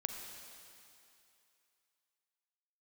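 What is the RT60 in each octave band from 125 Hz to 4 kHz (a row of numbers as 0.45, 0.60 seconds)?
2.3, 2.4, 2.6, 2.8, 2.8, 2.7 seconds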